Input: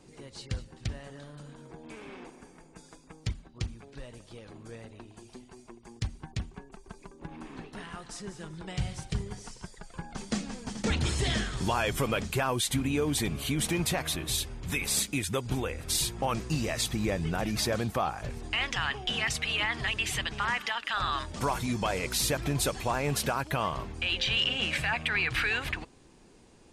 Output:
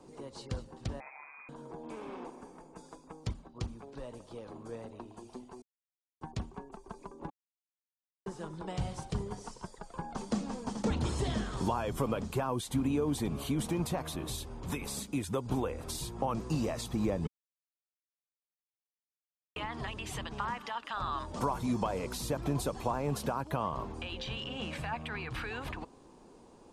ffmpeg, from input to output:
-filter_complex "[0:a]asettb=1/sr,asplit=3[a][b][c];[a]atrim=end=1.004[d];[b]atrim=start=1:end=1.49,asetpts=PTS-STARTPTS,afade=t=in:d=0.004:c=qsin,afade=t=out:st=0.486:d=0.004:c=qsin,lowpass=f=2.2k:t=q:w=0.5098,lowpass=f=2.2k:t=q:w=0.6013,lowpass=f=2.2k:t=q:w=0.9,lowpass=f=2.2k:t=q:w=2.563,afreqshift=-2600[e];[c]atrim=start=1.486[f];[d][e]acrossfade=d=0.004:c1=hsin:c2=qsin[g];[g][f]acrossfade=d=0.004:c1=qsin:c2=hsin,asplit=7[h][i][j][k][l][m][n];[h]atrim=end=5.62,asetpts=PTS-STARTPTS,afade=t=out:st=5.616:d=0.004:c=hsin[o];[i]atrim=start=5.62:end=6.21,asetpts=PTS-STARTPTS,volume=0[p];[j]atrim=start=6.21:end=7.3,asetpts=PTS-STARTPTS,afade=t=in:d=0.004:c=hsin,afade=t=out:st=1.086:d=0.004:c=hsin[q];[k]atrim=start=7.3:end=8.26,asetpts=PTS-STARTPTS,volume=0[r];[l]atrim=start=8.26:end=17.27,asetpts=PTS-STARTPTS,afade=t=in:d=0.004:c=hsin,afade=t=out:st=9.006:d=0.004:c=hsin[s];[m]atrim=start=17.27:end=19.56,asetpts=PTS-STARTPTS,volume=0[t];[n]atrim=start=19.56,asetpts=PTS-STARTPTS,afade=t=in:d=0.004:c=hsin[u];[o][p][q][r][s][t][u]concat=n=7:v=0:a=1,acrossover=split=260[v][w];[w]acompressor=threshold=-36dB:ratio=3[x];[v][x]amix=inputs=2:normalize=0,equalizer=f=250:t=o:w=1:g=5,equalizer=f=500:t=o:w=1:g=6,equalizer=f=1k:t=o:w=1:g=10,equalizer=f=2k:t=o:w=1:g=-5,volume=-4.5dB"

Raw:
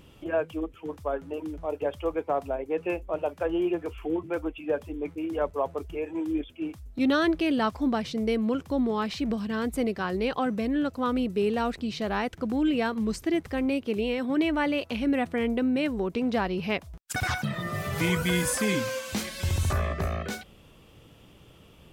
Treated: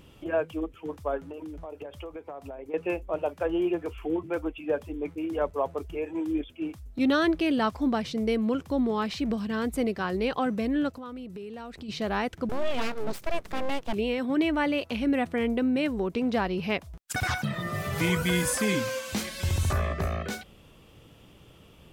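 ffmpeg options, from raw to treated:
-filter_complex "[0:a]asettb=1/sr,asplit=3[a][b][c];[a]atrim=end=1.304[d];[b]atrim=start=1.3:end=2.74,asetpts=PTS-STARTPTS,afade=t=in:d=0.004:c=qsin,afade=t=out:st=1.436:d=0.004:c=qsin,acompressor=threshold=-35dB:ratio=16:attack=3.2:release=140:knee=1:detection=peak[e];[c]atrim=start=2.736[f];[d][e]acrossfade=d=0.004:c1=hsin:c2=qsin[g];[g][f]acrossfade=d=0.004:c1=qsin:c2=hsin,asplit=3[h][i][j];[h]afade=t=out:st=10.91:d=0.02[k];[i]acompressor=threshold=-38dB:ratio=5:attack=3.2:release=140:knee=1:detection=peak,afade=t=in:st=10.91:d=0.02,afade=t=out:st=11.88:d=0.02[l];[j]afade=t=in:st=11.88:d=0.02[m];[k][l][m]amix=inputs=3:normalize=0,asettb=1/sr,asplit=3[n][o][p];[n]atrim=end=12.494[q];[o]atrim=start=12.49:end=13.93,asetpts=PTS-STARTPTS,afade=t=in:d=0.004:c=qsin,afade=t=out:st=1.436:d=0.004:c=qsin,aeval=exprs='abs(val(0))':c=same[r];[p]atrim=start=13.926[s];[q][r]acrossfade=d=0.004:c1=hsin:c2=qsin[t];[t][s]acrossfade=d=0.004:c1=qsin:c2=hsin"

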